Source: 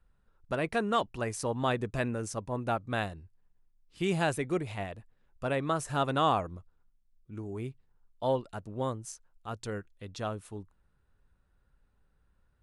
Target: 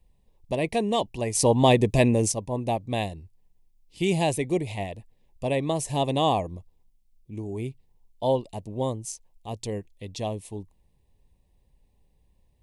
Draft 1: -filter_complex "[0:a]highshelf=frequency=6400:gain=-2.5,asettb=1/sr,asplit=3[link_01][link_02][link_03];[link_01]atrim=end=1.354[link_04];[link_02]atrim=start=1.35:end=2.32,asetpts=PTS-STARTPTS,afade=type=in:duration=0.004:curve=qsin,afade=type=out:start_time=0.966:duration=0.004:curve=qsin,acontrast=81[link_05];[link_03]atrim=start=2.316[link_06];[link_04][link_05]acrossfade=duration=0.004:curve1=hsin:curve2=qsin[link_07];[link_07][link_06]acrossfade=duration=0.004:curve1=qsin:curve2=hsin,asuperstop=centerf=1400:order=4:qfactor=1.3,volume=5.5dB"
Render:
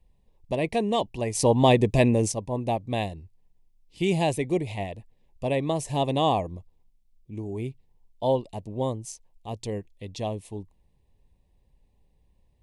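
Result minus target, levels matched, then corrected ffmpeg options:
8,000 Hz band −3.5 dB
-filter_complex "[0:a]highshelf=frequency=6400:gain=4,asettb=1/sr,asplit=3[link_01][link_02][link_03];[link_01]atrim=end=1.354[link_04];[link_02]atrim=start=1.35:end=2.32,asetpts=PTS-STARTPTS,afade=type=in:duration=0.004:curve=qsin,afade=type=out:start_time=0.966:duration=0.004:curve=qsin,acontrast=81[link_05];[link_03]atrim=start=2.316[link_06];[link_04][link_05]acrossfade=duration=0.004:curve1=hsin:curve2=qsin[link_07];[link_07][link_06]acrossfade=duration=0.004:curve1=qsin:curve2=hsin,asuperstop=centerf=1400:order=4:qfactor=1.3,volume=5.5dB"

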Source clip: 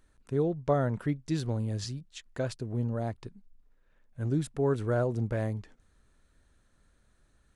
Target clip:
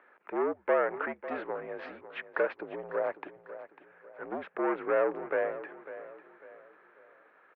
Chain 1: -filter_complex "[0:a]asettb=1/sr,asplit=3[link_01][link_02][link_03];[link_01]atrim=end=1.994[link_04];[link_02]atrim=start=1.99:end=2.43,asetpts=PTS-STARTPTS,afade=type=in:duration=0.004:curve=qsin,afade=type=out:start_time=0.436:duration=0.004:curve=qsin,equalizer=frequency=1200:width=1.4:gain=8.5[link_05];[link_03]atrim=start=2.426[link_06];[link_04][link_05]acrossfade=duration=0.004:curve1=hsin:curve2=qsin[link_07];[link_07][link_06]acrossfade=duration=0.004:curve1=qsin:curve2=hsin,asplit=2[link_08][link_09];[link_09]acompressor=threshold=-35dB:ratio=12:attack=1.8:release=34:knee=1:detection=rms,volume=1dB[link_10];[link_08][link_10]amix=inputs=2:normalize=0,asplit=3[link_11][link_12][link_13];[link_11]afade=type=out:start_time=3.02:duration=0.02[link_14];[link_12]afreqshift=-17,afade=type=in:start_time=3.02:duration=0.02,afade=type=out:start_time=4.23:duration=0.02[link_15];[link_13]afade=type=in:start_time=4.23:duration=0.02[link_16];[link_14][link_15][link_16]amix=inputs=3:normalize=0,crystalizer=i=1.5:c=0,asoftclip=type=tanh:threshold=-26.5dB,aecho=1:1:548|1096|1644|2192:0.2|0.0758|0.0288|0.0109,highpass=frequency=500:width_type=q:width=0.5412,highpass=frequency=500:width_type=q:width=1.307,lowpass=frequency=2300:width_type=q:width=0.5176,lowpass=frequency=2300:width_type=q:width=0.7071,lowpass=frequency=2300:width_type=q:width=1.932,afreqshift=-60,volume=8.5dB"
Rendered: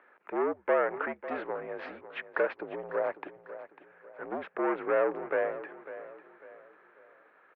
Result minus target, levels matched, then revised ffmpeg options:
downward compressor: peak gain reduction −5.5 dB
-filter_complex "[0:a]asettb=1/sr,asplit=3[link_01][link_02][link_03];[link_01]atrim=end=1.994[link_04];[link_02]atrim=start=1.99:end=2.43,asetpts=PTS-STARTPTS,afade=type=in:duration=0.004:curve=qsin,afade=type=out:start_time=0.436:duration=0.004:curve=qsin,equalizer=frequency=1200:width=1.4:gain=8.5[link_05];[link_03]atrim=start=2.426[link_06];[link_04][link_05]acrossfade=duration=0.004:curve1=hsin:curve2=qsin[link_07];[link_07][link_06]acrossfade=duration=0.004:curve1=qsin:curve2=hsin,asplit=2[link_08][link_09];[link_09]acompressor=threshold=-41dB:ratio=12:attack=1.8:release=34:knee=1:detection=rms,volume=1dB[link_10];[link_08][link_10]amix=inputs=2:normalize=0,asplit=3[link_11][link_12][link_13];[link_11]afade=type=out:start_time=3.02:duration=0.02[link_14];[link_12]afreqshift=-17,afade=type=in:start_time=3.02:duration=0.02,afade=type=out:start_time=4.23:duration=0.02[link_15];[link_13]afade=type=in:start_time=4.23:duration=0.02[link_16];[link_14][link_15][link_16]amix=inputs=3:normalize=0,crystalizer=i=1.5:c=0,asoftclip=type=tanh:threshold=-26.5dB,aecho=1:1:548|1096|1644|2192:0.2|0.0758|0.0288|0.0109,highpass=frequency=500:width_type=q:width=0.5412,highpass=frequency=500:width_type=q:width=1.307,lowpass=frequency=2300:width_type=q:width=0.5176,lowpass=frequency=2300:width_type=q:width=0.7071,lowpass=frequency=2300:width_type=q:width=1.932,afreqshift=-60,volume=8.5dB"

